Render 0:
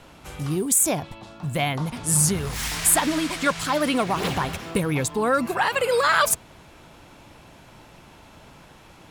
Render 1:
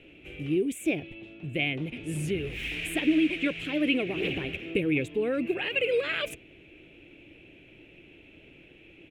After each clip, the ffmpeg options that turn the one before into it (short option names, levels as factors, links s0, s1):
-af "firequalizer=gain_entry='entry(220,0);entry(320,12);entry(970,-19);entry(2500,14);entry(4600,-16)':delay=0.05:min_phase=1,volume=0.376"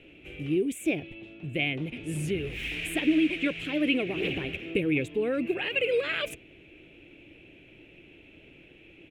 -af anull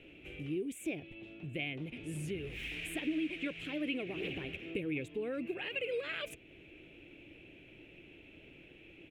-af "acompressor=threshold=0.00631:ratio=1.5,volume=0.708"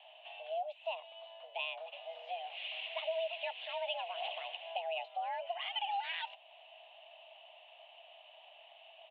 -af "highpass=f=290:t=q:w=0.5412,highpass=f=290:t=q:w=1.307,lowpass=f=3500:t=q:w=0.5176,lowpass=f=3500:t=q:w=0.7071,lowpass=f=3500:t=q:w=1.932,afreqshift=330"